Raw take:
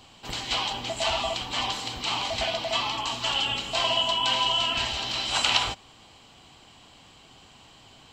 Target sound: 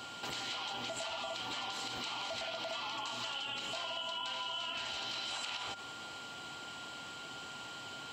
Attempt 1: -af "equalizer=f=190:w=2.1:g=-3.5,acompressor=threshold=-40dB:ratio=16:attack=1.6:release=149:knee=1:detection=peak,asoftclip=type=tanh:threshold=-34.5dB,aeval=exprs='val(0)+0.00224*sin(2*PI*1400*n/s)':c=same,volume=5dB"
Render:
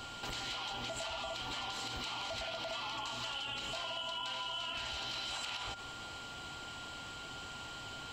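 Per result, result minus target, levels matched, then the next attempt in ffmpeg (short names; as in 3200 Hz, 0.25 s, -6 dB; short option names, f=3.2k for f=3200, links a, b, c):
soft clip: distortion +11 dB; 125 Hz band +5.5 dB
-af "equalizer=f=190:w=2.1:g=-3.5,acompressor=threshold=-40dB:ratio=16:attack=1.6:release=149:knee=1:detection=peak,asoftclip=type=tanh:threshold=-28.5dB,aeval=exprs='val(0)+0.00224*sin(2*PI*1400*n/s)':c=same,volume=5dB"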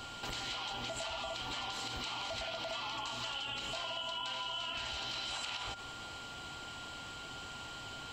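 125 Hz band +5.5 dB
-af "highpass=150,equalizer=f=190:w=2.1:g=-3.5,acompressor=threshold=-40dB:ratio=16:attack=1.6:release=149:knee=1:detection=peak,asoftclip=type=tanh:threshold=-28.5dB,aeval=exprs='val(0)+0.00224*sin(2*PI*1400*n/s)':c=same,volume=5dB"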